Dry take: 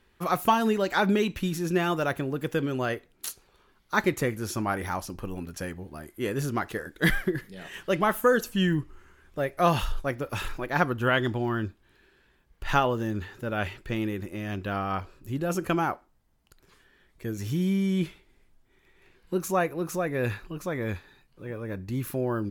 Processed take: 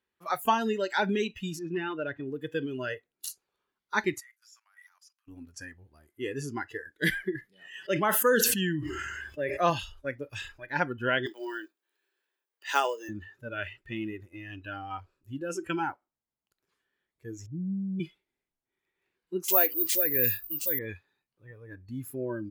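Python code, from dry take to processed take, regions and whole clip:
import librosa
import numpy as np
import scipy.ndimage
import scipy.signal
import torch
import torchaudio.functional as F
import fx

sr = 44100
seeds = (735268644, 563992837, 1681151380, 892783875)

y = fx.chain(x, sr, fx.overload_stage(gain_db=21.0),
    fx.air_absorb(metres=220.0), at=(1.59, 2.26))
y = fx.chain(y, sr, fx.highpass(hz=1400.0, slope=24),
    fx.dynamic_eq(hz=2300.0, q=1.1, threshold_db=-45.0, ratio=4.0, max_db=-4),
    fx.level_steps(step_db=16), at=(4.2, 5.28))
y = fx.chain(y, sr, fx.highpass(hz=69.0, slope=12),
    fx.sustainer(db_per_s=23.0), at=(7.53, 9.7))
y = fx.chain(y, sr, fx.highpass(hz=330.0, slope=24),
    fx.high_shelf(hz=5900.0, db=11.0),
    fx.quant_float(bits=2), at=(11.26, 13.09))
y = fx.chain(y, sr, fx.block_float(bits=5),
    fx.cheby_ripple(hz=810.0, ripple_db=6), at=(17.46, 18.0))
y = fx.chain(y, sr, fx.bass_treble(bass_db=1, treble_db=10),
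    fx.resample_bad(factor=3, down='none', up='zero_stuff'), at=(19.48, 20.79))
y = fx.highpass(y, sr, hz=240.0, slope=6)
y = fx.noise_reduce_blind(y, sr, reduce_db=17)
y = F.gain(torch.from_numpy(y), -2.0).numpy()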